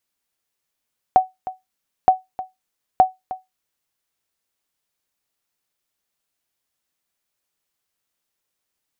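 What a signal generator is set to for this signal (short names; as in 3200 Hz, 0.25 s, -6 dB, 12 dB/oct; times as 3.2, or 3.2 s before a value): sonar ping 749 Hz, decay 0.18 s, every 0.92 s, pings 3, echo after 0.31 s, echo -16 dB -3.5 dBFS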